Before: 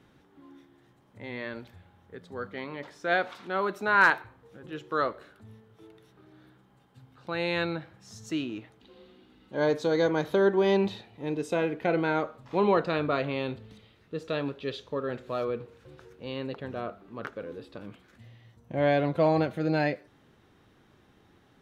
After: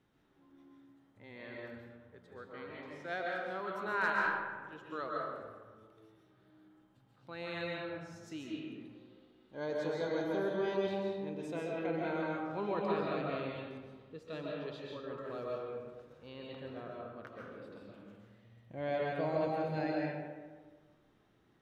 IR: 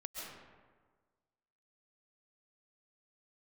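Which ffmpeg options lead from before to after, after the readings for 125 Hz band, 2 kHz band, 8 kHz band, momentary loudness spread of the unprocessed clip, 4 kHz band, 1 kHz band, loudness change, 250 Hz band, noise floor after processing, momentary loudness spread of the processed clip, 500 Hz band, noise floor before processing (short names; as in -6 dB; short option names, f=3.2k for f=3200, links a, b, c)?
-10.0 dB, -9.5 dB, n/a, 18 LU, -10.0 dB, -8.5 dB, -9.5 dB, -9.0 dB, -69 dBFS, 17 LU, -9.0 dB, -62 dBFS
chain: -filter_complex "[1:a]atrim=start_sample=2205[a];[0:a][a]afir=irnorm=-1:irlink=0,volume=-8dB"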